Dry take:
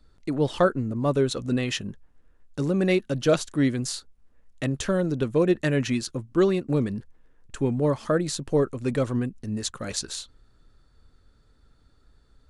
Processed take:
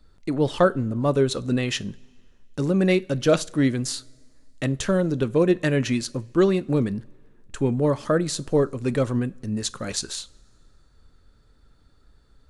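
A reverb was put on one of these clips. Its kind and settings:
coupled-rooms reverb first 0.33 s, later 2 s, from −18 dB, DRR 17 dB
level +2 dB

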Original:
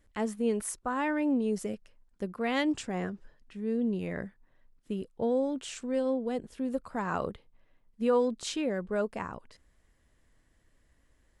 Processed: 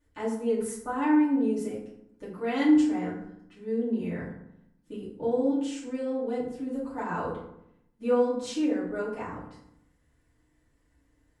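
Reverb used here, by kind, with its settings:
feedback delay network reverb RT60 0.76 s, low-frequency decay 1.35×, high-frequency decay 0.55×, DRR −10 dB
level −11 dB

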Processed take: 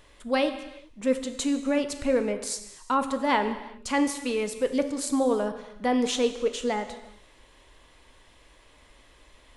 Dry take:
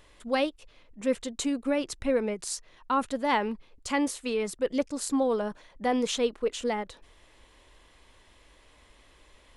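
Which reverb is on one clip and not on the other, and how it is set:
reverb whose tail is shaped and stops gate 420 ms falling, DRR 8 dB
level +1.5 dB

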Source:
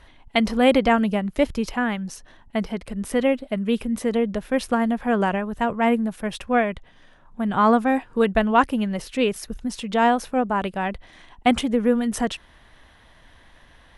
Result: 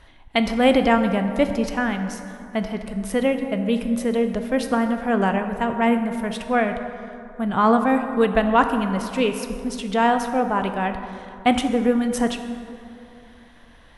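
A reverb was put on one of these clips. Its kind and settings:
dense smooth reverb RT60 2.7 s, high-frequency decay 0.45×, DRR 6.5 dB

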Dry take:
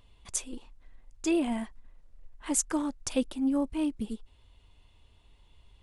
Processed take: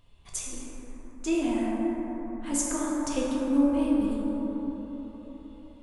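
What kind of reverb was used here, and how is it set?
dense smooth reverb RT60 4.7 s, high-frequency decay 0.25×, DRR −6 dB
level −3.5 dB

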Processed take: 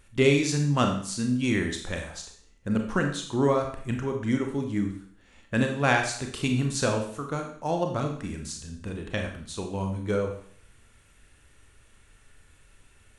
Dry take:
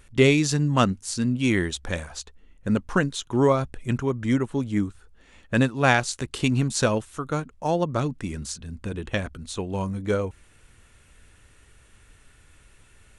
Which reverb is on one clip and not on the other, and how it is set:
four-comb reverb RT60 0.56 s, combs from 28 ms, DRR 3 dB
level −4.5 dB

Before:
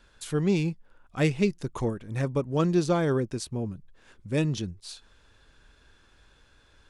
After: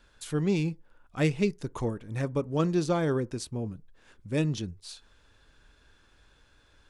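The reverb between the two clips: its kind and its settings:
feedback delay network reverb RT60 0.33 s, low-frequency decay 0.75×, high-frequency decay 0.4×, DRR 18.5 dB
level −2 dB

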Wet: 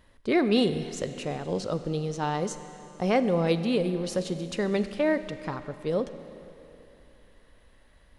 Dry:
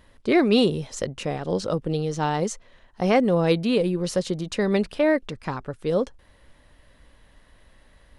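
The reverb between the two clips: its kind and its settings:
four-comb reverb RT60 3.1 s, combs from 32 ms, DRR 11 dB
level −4.5 dB

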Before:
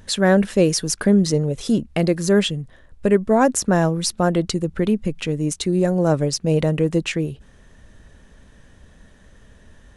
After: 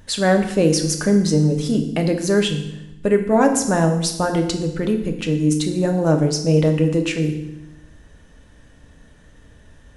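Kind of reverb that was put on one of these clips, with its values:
feedback delay network reverb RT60 0.87 s, low-frequency decay 1.45×, high-frequency decay 1×, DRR 4 dB
level −1 dB

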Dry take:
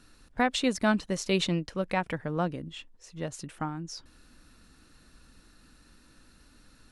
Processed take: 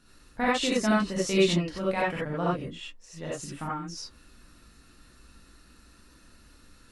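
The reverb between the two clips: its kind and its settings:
reverb whose tail is shaped and stops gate 110 ms rising, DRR −7 dB
level −5 dB

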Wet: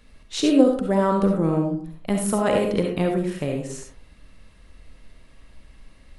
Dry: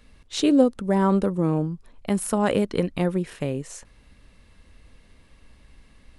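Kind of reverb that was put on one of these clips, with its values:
comb and all-pass reverb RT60 0.49 s, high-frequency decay 0.45×, pre-delay 25 ms, DRR 2 dB

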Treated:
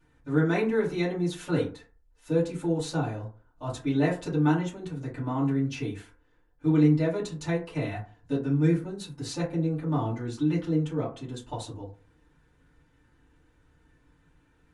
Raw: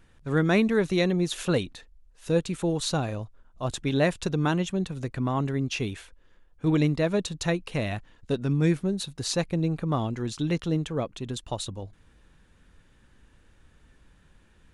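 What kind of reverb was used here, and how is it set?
feedback delay network reverb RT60 0.39 s, low-frequency decay 0.95×, high-frequency decay 0.4×, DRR −9.5 dB
level −13.5 dB

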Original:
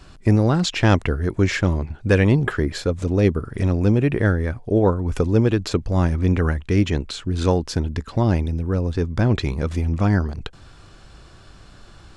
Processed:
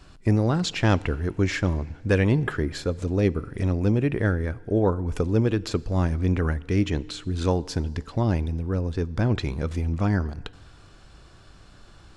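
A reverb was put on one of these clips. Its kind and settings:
feedback delay network reverb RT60 1.6 s, low-frequency decay 0.85×, high-frequency decay 1×, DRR 19.5 dB
level −4.5 dB

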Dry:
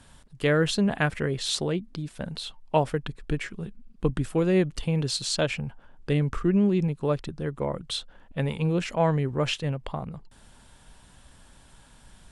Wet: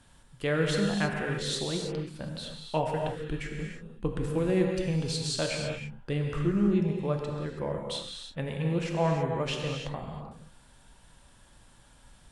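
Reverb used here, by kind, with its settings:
reverb whose tail is shaped and stops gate 350 ms flat, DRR 0.5 dB
level −6 dB

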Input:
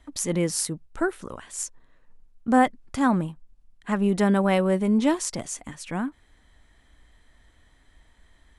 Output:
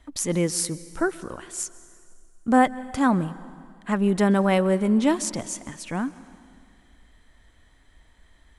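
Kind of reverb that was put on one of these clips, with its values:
dense smooth reverb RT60 2.2 s, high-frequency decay 0.9×, pre-delay 115 ms, DRR 17.5 dB
level +1 dB

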